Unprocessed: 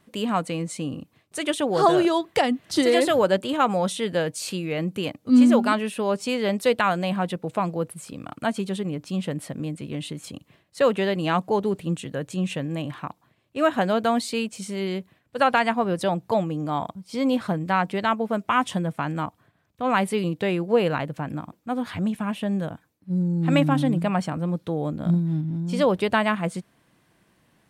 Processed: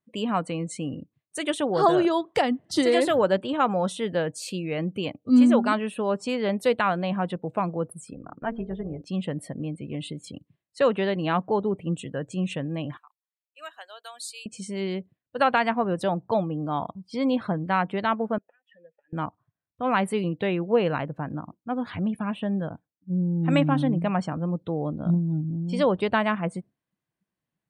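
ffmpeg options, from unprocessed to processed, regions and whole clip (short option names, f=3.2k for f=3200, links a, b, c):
-filter_complex "[0:a]asettb=1/sr,asplit=3[a][b][c];[a]atrim=end=8.144[d];[b]atrim=start=8.14:end=9.02,asetpts=PTS-STARTPTS,afade=t=in:d=0.004:c=qsin,afade=t=out:st=0.876:d=0.004:c=qsin,lowpass=2.1k,bandreject=f=57.87:t=h:w=4,bandreject=f=115.74:t=h:w=4,bandreject=f=173.61:t=h:w=4,bandreject=f=231.48:t=h:w=4,bandreject=f=289.35:t=h:w=4,bandreject=f=347.22:t=h:w=4,bandreject=f=405.09:t=h:w=4,bandreject=f=462.96:t=h:w=4,tremolo=f=240:d=0.571[e];[c]atrim=start=9.016[f];[d][e]acrossfade=d=0.004:c1=hsin:c2=qsin[g];[g][f]acrossfade=d=0.004:c1=qsin:c2=hsin,asettb=1/sr,asplit=3[h][i][j];[h]atrim=end=12.974[k];[i]atrim=start=12.97:end=14.46,asetpts=PTS-STARTPTS,afade=t=in:d=0.004:c=qsin,afade=t=out:st=1.486:d=0.004:c=qsin,highpass=430,aderivative[l];[j]atrim=start=14.456[m];[k][l]acrossfade=d=0.004:c1=hsin:c2=qsin[n];[n][m]acrossfade=d=0.004:c1=qsin:c2=hsin,asettb=1/sr,asplit=3[o][p][q];[o]atrim=end=18.384[r];[p]atrim=start=18.38:end=19.13,asetpts=PTS-STARTPTS,afade=t=in:d=0.004:c=qsin,afade=t=out:st=0.746:d=0.004:c=qsin,lowshelf=f=750:t=q:w=3:g=-6,acompressor=threshold=-31dB:ratio=12:attack=3.2:release=140:knee=1:detection=peak,asplit=3[s][t][u];[s]bandpass=f=530:t=q:w=8,volume=0dB[v];[t]bandpass=f=1.84k:t=q:w=8,volume=-6dB[w];[u]bandpass=f=2.48k:t=q:w=8,volume=-9dB[x];[v][w][x]amix=inputs=3:normalize=0[y];[q]atrim=start=19.126[z];[r][y]acrossfade=d=0.004:c1=hsin:c2=qsin[aa];[aa][z]acrossfade=d=0.004:c1=qsin:c2=hsin,afftdn=nr=24:nf=-44,adynamicequalizer=threshold=0.0126:dfrequency=2000:dqfactor=0.7:tfrequency=2000:tqfactor=0.7:attack=5:release=100:ratio=0.375:range=2:mode=cutabove:tftype=highshelf,volume=-1.5dB"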